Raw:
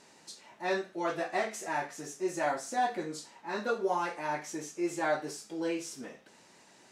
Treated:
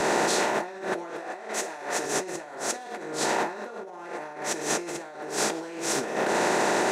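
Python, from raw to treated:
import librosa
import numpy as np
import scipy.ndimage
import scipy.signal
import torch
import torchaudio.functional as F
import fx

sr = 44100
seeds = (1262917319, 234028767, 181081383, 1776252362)

y = fx.bin_compress(x, sr, power=0.4)
y = fx.highpass(y, sr, hz=230.0, slope=6, at=(1.11, 2.05))
y = fx.over_compress(y, sr, threshold_db=-36.0, ratio=-1.0)
y = fx.band_widen(y, sr, depth_pct=70)
y = F.gain(torch.from_numpy(y), 6.0).numpy()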